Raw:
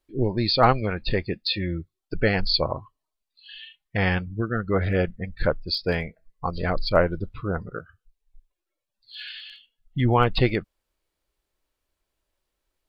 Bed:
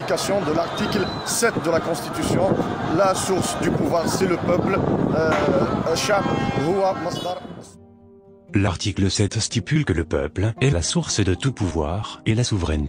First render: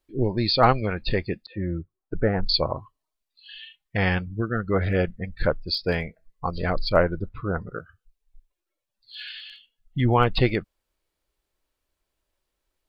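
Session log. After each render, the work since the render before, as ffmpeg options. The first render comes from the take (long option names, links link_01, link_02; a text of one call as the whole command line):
ffmpeg -i in.wav -filter_complex "[0:a]asettb=1/sr,asplit=3[link_01][link_02][link_03];[link_01]atrim=end=1.464[link_04];[link_02]atrim=start=1.46:end=2.49,asetpts=PTS-STARTPTS,afade=type=in:duration=0.004:curve=qsin,afade=type=out:start_time=1.026:duration=0.004:curve=qsin,lowpass=frequency=1500:width=0.5412,lowpass=frequency=1500:width=1.3066[link_05];[link_03]atrim=start=2.486[link_06];[link_04][link_05]acrossfade=duration=0.004:curve1=hsin:curve2=qsin[link_07];[link_07][link_06]acrossfade=duration=0.004:curve1=qsin:curve2=hsin,asettb=1/sr,asplit=3[link_08][link_09][link_10];[link_08]atrim=end=7.034[link_11];[link_09]atrim=start=7.03:end=7.68,asetpts=PTS-STARTPTS,afade=type=in:duration=0.004:curve=qsin,afade=type=out:start_time=0.646:duration=0.004:curve=qsin,highshelf=frequency=2300:width_type=q:width=1.5:gain=-6.5[link_12];[link_10]atrim=start=7.676[link_13];[link_11][link_12]acrossfade=duration=0.004:curve1=hsin:curve2=qsin[link_14];[link_14][link_13]acrossfade=duration=0.004:curve1=qsin:curve2=hsin" out.wav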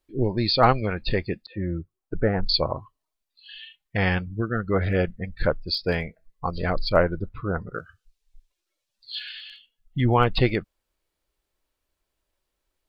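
ffmpeg -i in.wav -filter_complex "[0:a]asettb=1/sr,asplit=3[link_01][link_02][link_03];[link_01]atrim=end=7.744[link_04];[link_02]atrim=start=7.74:end=9.19,asetpts=PTS-STARTPTS,afade=type=in:duration=0.004:curve=qsin,afade=type=out:start_time=1.446:duration=0.004:curve=qsin,equalizer=frequency=4800:width=0.53:gain=9.5[link_05];[link_03]atrim=start=9.186[link_06];[link_04][link_05]acrossfade=duration=0.004:curve1=hsin:curve2=qsin[link_07];[link_07][link_06]acrossfade=duration=0.004:curve1=qsin:curve2=hsin" out.wav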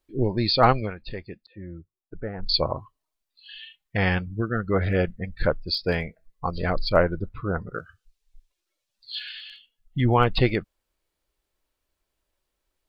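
ffmpeg -i in.wav -filter_complex "[0:a]asplit=3[link_01][link_02][link_03];[link_01]atrim=end=0.95,asetpts=PTS-STARTPTS,afade=type=out:start_time=0.79:duration=0.16:silence=0.298538[link_04];[link_02]atrim=start=0.95:end=2.38,asetpts=PTS-STARTPTS,volume=-10.5dB[link_05];[link_03]atrim=start=2.38,asetpts=PTS-STARTPTS,afade=type=in:duration=0.16:silence=0.298538[link_06];[link_04][link_05][link_06]concat=n=3:v=0:a=1" out.wav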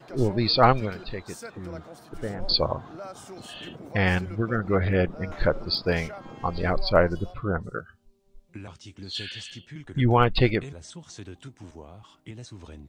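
ffmpeg -i in.wav -i bed.wav -filter_complex "[1:a]volume=-21.5dB[link_01];[0:a][link_01]amix=inputs=2:normalize=0" out.wav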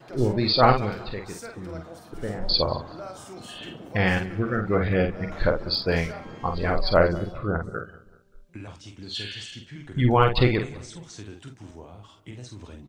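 ffmpeg -i in.wav -filter_complex "[0:a]asplit=2[link_01][link_02];[link_02]adelay=48,volume=-6dB[link_03];[link_01][link_03]amix=inputs=2:normalize=0,asplit=2[link_04][link_05];[link_05]adelay=192,lowpass=frequency=4100:poles=1,volume=-19dB,asplit=2[link_06][link_07];[link_07]adelay=192,lowpass=frequency=4100:poles=1,volume=0.42,asplit=2[link_08][link_09];[link_09]adelay=192,lowpass=frequency=4100:poles=1,volume=0.42[link_10];[link_04][link_06][link_08][link_10]amix=inputs=4:normalize=0" out.wav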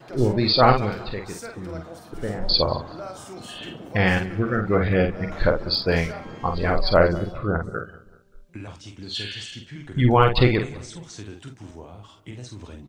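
ffmpeg -i in.wav -af "volume=2.5dB,alimiter=limit=-3dB:level=0:latency=1" out.wav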